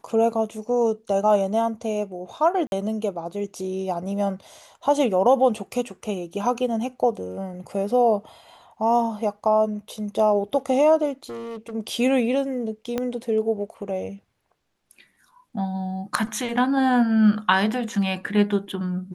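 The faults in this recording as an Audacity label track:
2.670000	2.720000	gap 51 ms
11.240000	11.740000	clipped -30.5 dBFS
12.980000	12.980000	pop -12 dBFS

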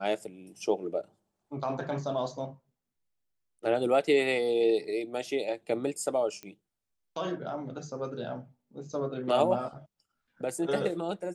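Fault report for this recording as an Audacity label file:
6.430000	6.430000	pop -25 dBFS

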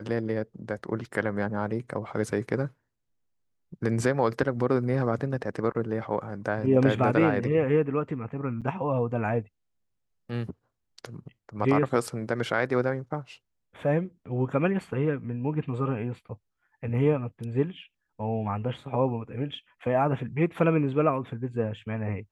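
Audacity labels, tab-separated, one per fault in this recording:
8.610000	8.620000	gap 7.4 ms

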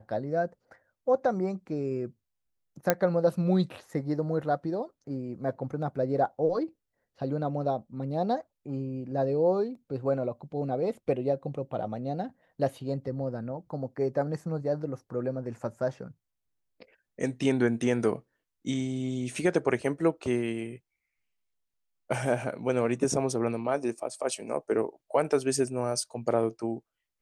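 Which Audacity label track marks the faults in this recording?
2.900000	2.900000	pop -7 dBFS

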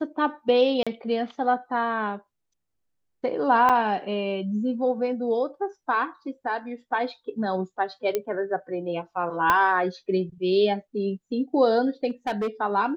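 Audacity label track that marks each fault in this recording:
0.830000	0.870000	gap 36 ms
3.690000	3.700000	gap 6.2 ms
8.150000	8.150000	pop -12 dBFS
9.500000	9.500000	pop -7 dBFS
12.100000	12.480000	clipped -22.5 dBFS

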